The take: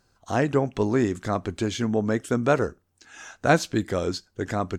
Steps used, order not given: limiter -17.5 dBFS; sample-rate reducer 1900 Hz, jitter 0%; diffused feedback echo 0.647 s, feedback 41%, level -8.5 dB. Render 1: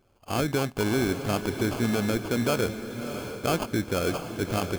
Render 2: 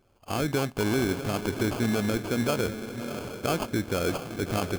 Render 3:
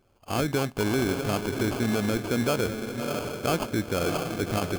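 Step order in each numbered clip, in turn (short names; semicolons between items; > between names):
sample-rate reducer > limiter > diffused feedback echo; limiter > diffused feedback echo > sample-rate reducer; diffused feedback echo > sample-rate reducer > limiter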